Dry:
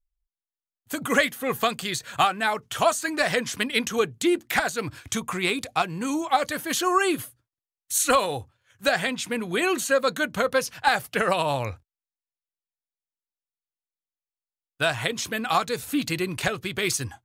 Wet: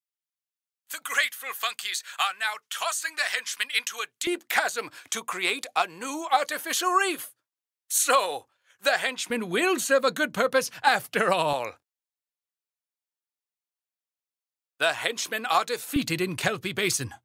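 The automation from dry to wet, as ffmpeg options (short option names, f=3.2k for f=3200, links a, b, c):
-af "asetnsamples=n=441:p=0,asendcmd='4.27 highpass f 480;9.3 highpass f 160;11.53 highpass f 380;15.96 highpass f 110',highpass=1.4k"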